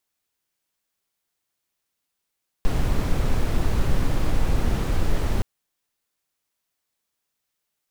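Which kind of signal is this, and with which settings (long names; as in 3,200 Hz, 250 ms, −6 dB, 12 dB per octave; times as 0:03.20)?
noise brown, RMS −19 dBFS 2.77 s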